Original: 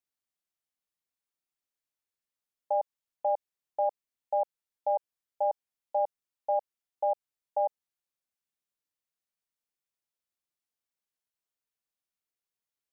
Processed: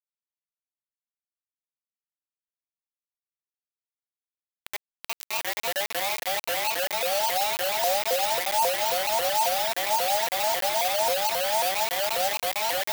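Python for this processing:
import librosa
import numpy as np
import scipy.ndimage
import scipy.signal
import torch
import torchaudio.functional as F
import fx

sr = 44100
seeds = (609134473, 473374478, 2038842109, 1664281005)

y = fx.bin_expand(x, sr, power=2.0)
y = fx.paulstretch(y, sr, seeds[0], factor=14.0, window_s=1.0, from_s=2.08)
y = fx.quant_dither(y, sr, seeds[1], bits=6, dither='none')
y = fx.tilt_eq(y, sr, slope=5.0)
y = fx.leveller(y, sr, passes=5)
y = fx.vibrato_shape(y, sr, shape='saw_up', rate_hz=3.7, depth_cents=250.0)
y = F.gain(torch.from_numpy(y), -2.0).numpy()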